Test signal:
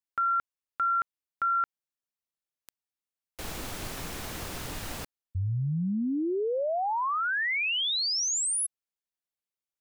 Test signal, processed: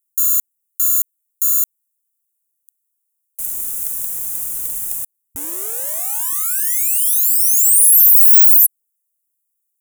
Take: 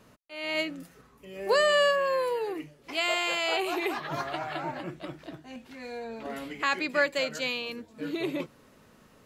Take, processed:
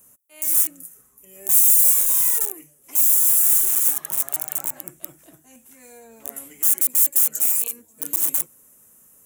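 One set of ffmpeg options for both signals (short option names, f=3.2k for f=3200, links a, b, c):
-af "aeval=exprs='(mod(21.1*val(0)+1,2)-1)/21.1':c=same,aexciter=amount=14.2:drive=9:freq=6.9k,volume=-8.5dB"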